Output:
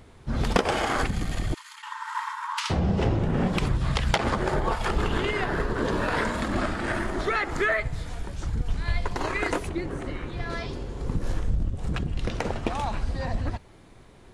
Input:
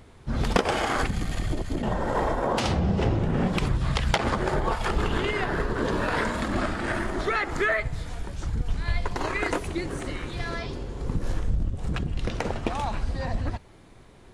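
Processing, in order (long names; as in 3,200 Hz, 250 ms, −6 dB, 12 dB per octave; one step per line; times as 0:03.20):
0:01.54–0:02.70: linear-phase brick-wall high-pass 860 Hz
0:09.69–0:10.50: high-shelf EQ 3,400 Hz −11.5 dB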